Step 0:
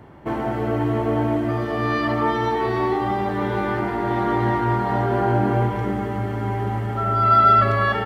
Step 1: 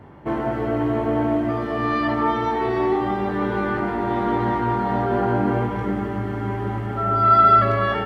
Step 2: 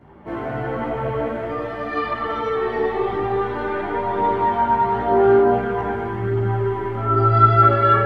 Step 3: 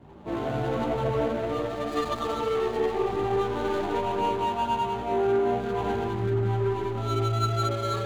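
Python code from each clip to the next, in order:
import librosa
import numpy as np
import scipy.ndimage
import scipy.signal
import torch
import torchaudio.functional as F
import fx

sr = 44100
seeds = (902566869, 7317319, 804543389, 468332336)

y1 = fx.high_shelf(x, sr, hz=4200.0, db=-7.5)
y1 = fx.doubler(y1, sr, ms=21.0, db=-7.5)
y2 = fx.rev_spring(y1, sr, rt60_s=1.9, pass_ms=(38, 53), chirp_ms=30, drr_db=-4.0)
y2 = fx.chorus_voices(y2, sr, voices=2, hz=0.47, base_ms=14, depth_ms=3.7, mix_pct=55)
y2 = y2 * 10.0 ** (-1.5 / 20.0)
y3 = scipy.signal.medfilt(y2, 25)
y3 = fx.rider(y3, sr, range_db=4, speed_s=0.5)
y3 = y3 * 10.0 ** (-5.5 / 20.0)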